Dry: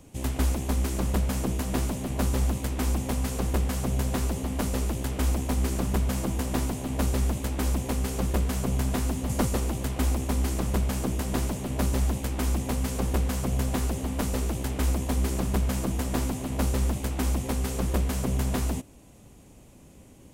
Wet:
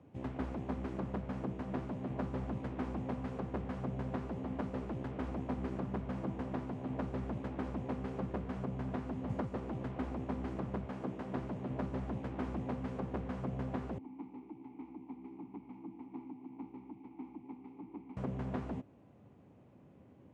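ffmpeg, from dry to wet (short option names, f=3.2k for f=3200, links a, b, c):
-filter_complex "[0:a]asettb=1/sr,asplit=3[a][b][c];[a]atrim=end=10.854[d];[b]atrim=start=10.85:end=11.34,asetpts=PTS-STARTPTS,afade=t=in:d=0.004:c=qsin,afade=t=out:st=0.486:d=0.004:c=qsin,highpass=f=180:p=1[e];[c]atrim=start=11.336[f];[d][e]acrossfade=d=0.004:c1=hsin:c2=qsin[g];[g][f]acrossfade=d=0.004:c1=qsin:c2=hsin,asettb=1/sr,asplit=3[h][i][j];[h]atrim=end=13.984[k];[i]atrim=start=13.98:end=18.17,asetpts=PTS-STARTPTS,afade=t=in:d=0.004:c=qsin,afade=t=out:st=4.186:d=0.004:c=qsin,asplit=3[l][m][n];[l]bandpass=f=300:t=q:w=8,volume=0dB[o];[m]bandpass=f=870:t=q:w=8,volume=-6dB[p];[n]bandpass=f=2.24k:t=q:w=8,volume=-9dB[q];[o][p][q]amix=inputs=3:normalize=0[r];[j]atrim=start=18.166[s];[k][r]acrossfade=d=0.004:c1=hsin:c2=qsin[t];[t][s]acrossfade=d=0.004:c1=qsin:c2=hsin,highpass=f=91:w=0.5412,highpass=f=91:w=1.3066,alimiter=limit=-17.5dB:level=0:latency=1:release=383,lowpass=1.6k,volume=-6.5dB"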